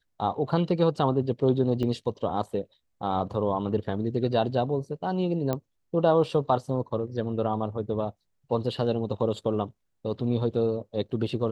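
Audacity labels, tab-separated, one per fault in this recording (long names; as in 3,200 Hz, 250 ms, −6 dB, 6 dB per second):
1.830000	1.830000	drop-out 4.2 ms
5.530000	5.530000	click −15 dBFS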